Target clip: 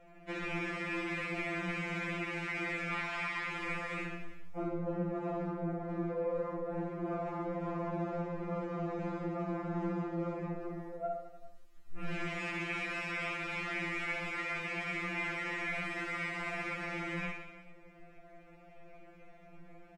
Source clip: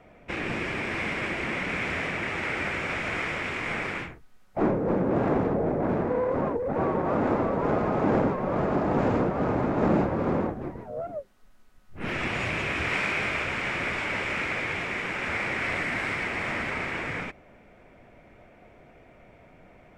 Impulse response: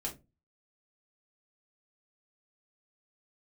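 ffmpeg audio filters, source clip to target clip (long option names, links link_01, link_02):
-filter_complex "[0:a]asettb=1/sr,asplit=3[link_01][link_02][link_03];[link_01]atrim=end=2.934[link_04];[link_02]atrim=start=2.93:end=3.43,asetpts=PTS-STARTPTS,afade=type=in:duration=0.004:curve=qsin,afade=type=out:start_time=0.496:duration=0.004:curve=qsin,equalizer=frequency=500:width_type=o:width=1:gain=-11,equalizer=frequency=1000:width_type=o:width=1:gain=12,equalizer=frequency=4000:width_type=o:width=1:gain=6[link_05];[link_03]atrim=start=3.426[link_06];[link_04][link_05]acrossfade=duration=0.004:curve1=hsin:curve2=qsin[link_07];[link_07][link_06]acrossfade=duration=0.004:curve1=qsin:curve2=hsin,asplit=2[link_08][link_09];[1:a]atrim=start_sample=2205[link_10];[link_09][link_10]afir=irnorm=-1:irlink=0,volume=-7dB[link_11];[link_08][link_11]amix=inputs=2:normalize=0,acompressor=threshold=-28dB:ratio=5,aecho=1:1:60|129|208.4|299.6|404.5:0.631|0.398|0.251|0.158|0.1,afftfilt=real='re*2.83*eq(mod(b,8),0)':imag='im*2.83*eq(mod(b,8),0)':win_size=2048:overlap=0.75,volume=-6.5dB"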